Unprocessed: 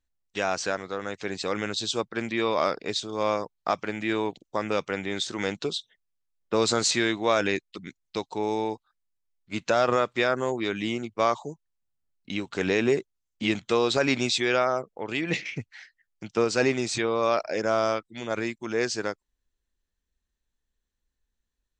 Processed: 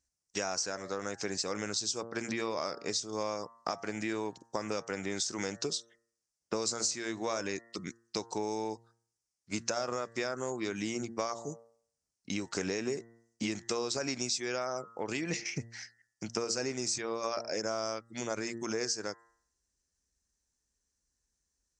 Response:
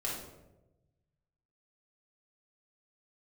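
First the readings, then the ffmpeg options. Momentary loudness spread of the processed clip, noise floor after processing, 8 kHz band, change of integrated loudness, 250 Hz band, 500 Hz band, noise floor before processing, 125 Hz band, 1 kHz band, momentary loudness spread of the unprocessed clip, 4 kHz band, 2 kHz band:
7 LU, below −85 dBFS, 0.0 dB, −8.0 dB, −8.0 dB, −10.0 dB, −82 dBFS, −8.0 dB, −10.0 dB, 11 LU, −6.5 dB, −10.0 dB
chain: -af "highpass=49,highshelf=frequency=4400:width_type=q:width=3:gain=7.5,bandreject=frequency=115.4:width_type=h:width=4,bandreject=frequency=230.8:width_type=h:width=4,bandreject=frequency=346.2:width_type=h:width=4,bandreject=frequency=461.6:width_type=h:width=4,bandreject=frequency=577:width_type=h:width=4,bandreject=frequency=692.4:width_type=h:width=4,bandreject=frequency=807.8:width_type=h:width=4,bandreject=frequency=923.2:width_type=h:width=4,bandreject=frequency=1038.6:width_type=h:width=4,bandreject=frequency=1154:width_type=h:width=4,bandreject=frequency=1269.4:width_type=h:width=4,bandreject=frequency=1384.8:width_type=h:width=4,bandreject=frequency=1500.2:width_type=h:width=4,bandreject=frequency=1615.6:width_type=h:width=4,bandreject=frequency=1731:width_type=h:width=4,bandreject=frequency=1846.4:width_type=h:width=4,bandreject=frequency=1961.8:width_type=h:width=4,acompressor=threshold=-31dB:ratio=6,aresample=22050,aresample=44100"

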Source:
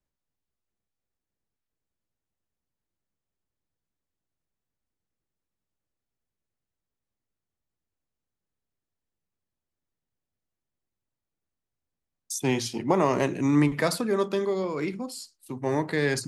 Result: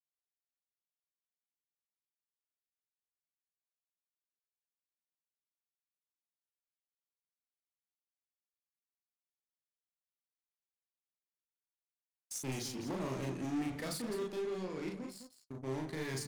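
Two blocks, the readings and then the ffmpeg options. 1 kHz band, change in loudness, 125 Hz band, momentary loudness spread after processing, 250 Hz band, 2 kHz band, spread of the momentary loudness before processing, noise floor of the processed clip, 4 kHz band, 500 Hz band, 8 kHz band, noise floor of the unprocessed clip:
−16.5 dB, −13.5 dB, −12.5 dB, 8 LU, −13.0 dB, −15.0 dB, 13 LU, below −85 dBFS, −10.5 dB, −14.0 dB, −9.0 dB, below −85 dBFS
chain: -filter_complex "[0:a]agate=range=-33dB:threshold=-35dB:ratio=3:detection=peak,equalizer=frequency=1000:width_type=o:width=2.2:gain=-8.5,asoftclip=type=tanh:threshold=-27dB,aeval=exprs='0.0447*(cos(1*acos(clip(val(0)/0.0447,-1,1)))-cos(1*PI/2))+0.001*(cos(3*acos(clip(val(0)/0.0447,-1,1)))-cos(3*PI/2))+0.00501*(cos(7*acos(clip(val(0)/0.0447,-1,1)))-cos(7*PI/2))':channel_layout=same,asplit=2[link_01][link_02];[link_02]aecho=0:1:37.9|207:0.794|0.316[link_03];[link_01][link_03]amix=inputs=2:normalize=0,volume=-8.5dB"

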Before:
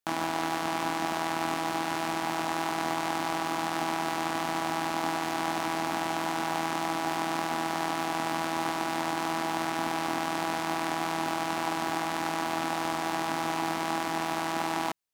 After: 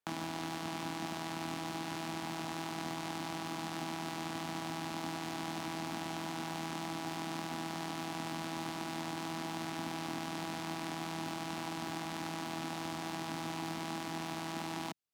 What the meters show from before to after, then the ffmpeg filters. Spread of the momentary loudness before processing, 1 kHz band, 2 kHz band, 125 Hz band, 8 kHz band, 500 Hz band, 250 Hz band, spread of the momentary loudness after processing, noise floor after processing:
0 LU, −12.0 dB, −10.5 dB, −2.0 dB, −7.5 dB, −10.5 dB, −6.5 dB, 0 LU, −41 dBFS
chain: -filter_complex "[0:a]highpass=frequency=140:poles=1,highshelf=frequency=3400:gain=-11.5,acrossover=split=230|3000[link_01][link_02][link_03];[link_02]acompressor=threshold=-49dB:ratio=2.5[link_04];[link_01][link_04][link_03]amix=inputs=3:normalize=0,volume=2dB"

